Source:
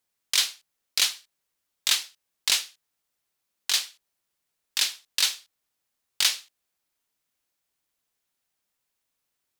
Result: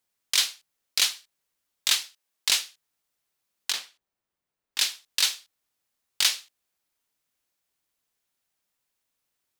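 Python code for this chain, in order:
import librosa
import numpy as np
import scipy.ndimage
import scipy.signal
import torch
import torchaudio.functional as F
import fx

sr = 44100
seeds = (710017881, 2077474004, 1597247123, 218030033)

y = fx.highpass(x, sr, hz=300.0, slope=6, at=(1.96, 2.49))
y = fx.peak_eq(y, sr, hz=14000.0, db=-12.0, octaves=2.9, at=(3.72, 4.79))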